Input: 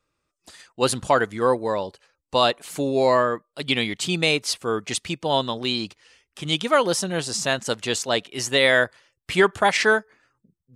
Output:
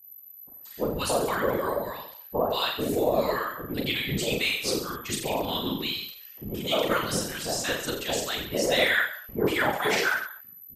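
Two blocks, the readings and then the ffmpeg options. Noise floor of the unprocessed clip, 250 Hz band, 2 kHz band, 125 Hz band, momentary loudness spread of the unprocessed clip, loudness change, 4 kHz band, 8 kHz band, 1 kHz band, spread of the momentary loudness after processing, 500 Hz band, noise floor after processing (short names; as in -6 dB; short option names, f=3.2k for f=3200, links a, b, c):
-81 dBFS, -3.5 dB, -4.0 dB, -4.0 dB, 9 LU, -5.0 dB, -4.0 dB, -4.0 dB, -6.0 dB, 12 LU, -5.0 dB, -48 dBFS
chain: -filter_complex "[0:a]acrossover=split=920[a][b];[b]adelay=180[c];[a][c]amix=inputs=2:normalize=0,aeval=exprs='val(0)+0.00708*sin(2*PI*12000*n/s)':c=same,asplit=2[d][e];[e]aecho=0:1:40|84|132.4|185.6|244.2:0.631|0.398|0.251|0.158|0.1[f];[d][f]amix=inputs=2:normalize=0,afftfilt=real='hypot(re,im)*cos(2*PI*random(0))':imag='hypot(re,im)*sin(2*PI*random(1))':win_size=512:overlap=0.75"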